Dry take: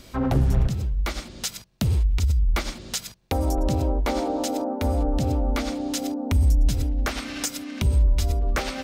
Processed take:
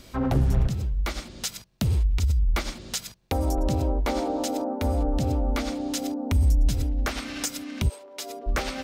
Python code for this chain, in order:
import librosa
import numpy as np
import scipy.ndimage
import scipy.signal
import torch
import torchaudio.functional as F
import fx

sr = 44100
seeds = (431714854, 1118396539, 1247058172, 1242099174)

y = fx.highpass(x, sr, hz=fx.line((7.88, 540.0), (8.46, 250.0)), slope=24, at=(7.88, 8.46), fade=0.02)
y = F.gain(torch.from_numpy(y), -1.5).numpy()